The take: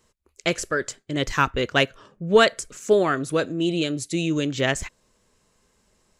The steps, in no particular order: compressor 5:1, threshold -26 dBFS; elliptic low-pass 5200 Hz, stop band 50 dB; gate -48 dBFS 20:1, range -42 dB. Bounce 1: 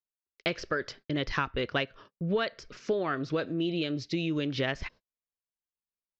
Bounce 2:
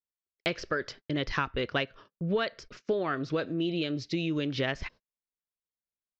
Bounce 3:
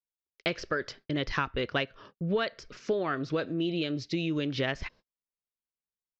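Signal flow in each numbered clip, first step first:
compressor > gate > elliptic low-pass; compressor > elliptic low-pass > gate; gate > compressor > elliptic low-pass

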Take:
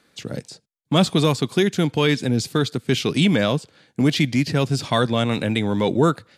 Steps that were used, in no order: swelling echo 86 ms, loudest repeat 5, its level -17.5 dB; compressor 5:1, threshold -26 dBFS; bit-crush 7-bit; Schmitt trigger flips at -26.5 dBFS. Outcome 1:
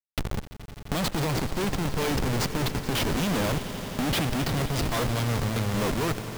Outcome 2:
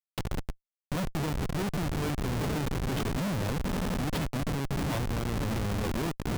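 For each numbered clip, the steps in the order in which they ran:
Schmitt trigger > compressor > swelling echo > bit-crush; swelling echo > compressor > bit-crush > Schmitt trigger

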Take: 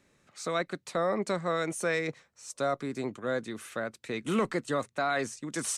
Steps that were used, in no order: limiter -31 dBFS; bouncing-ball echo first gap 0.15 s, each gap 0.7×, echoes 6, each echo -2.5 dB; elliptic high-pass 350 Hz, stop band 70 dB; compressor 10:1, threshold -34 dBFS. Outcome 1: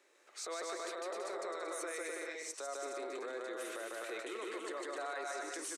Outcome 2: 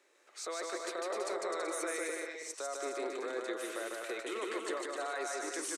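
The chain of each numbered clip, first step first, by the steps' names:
compressor > bouncing-ball echo > limiter > elliptic high-pass; elliptic high-pass > limiter > compressor > bouncing-ball echo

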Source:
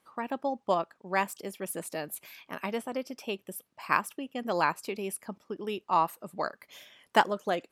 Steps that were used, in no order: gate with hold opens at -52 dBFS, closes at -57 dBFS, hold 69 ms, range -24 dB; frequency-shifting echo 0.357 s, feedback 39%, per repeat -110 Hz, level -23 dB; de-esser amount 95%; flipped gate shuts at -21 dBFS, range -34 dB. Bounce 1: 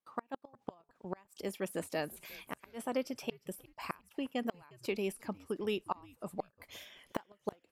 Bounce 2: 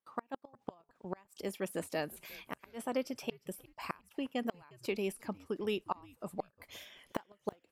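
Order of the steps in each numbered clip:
gate with hold > flipped gate > frequency-shifting echo > de-esser; gate with hold > flipped gate > de-esser > frequency-shifting echo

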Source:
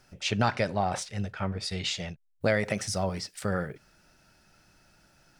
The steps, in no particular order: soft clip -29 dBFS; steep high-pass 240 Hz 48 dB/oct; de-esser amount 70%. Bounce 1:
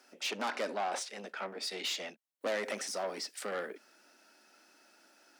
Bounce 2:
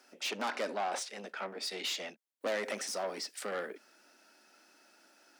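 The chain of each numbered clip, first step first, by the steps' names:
de-esser > soft clip > steep high-pass; soft clip > de-esser > steep high-pass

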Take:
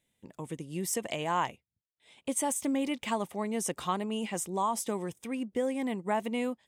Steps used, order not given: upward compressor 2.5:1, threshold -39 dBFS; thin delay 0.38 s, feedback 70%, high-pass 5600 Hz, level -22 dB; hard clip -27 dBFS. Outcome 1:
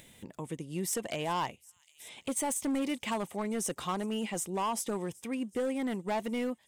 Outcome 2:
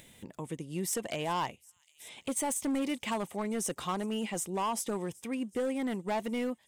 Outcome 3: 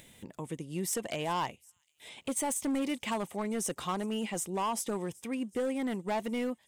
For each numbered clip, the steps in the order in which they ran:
thin delay > hard clip > upward compressor; thin delay > upward compressor > hard clip; upward compressor > thin delay > hard clip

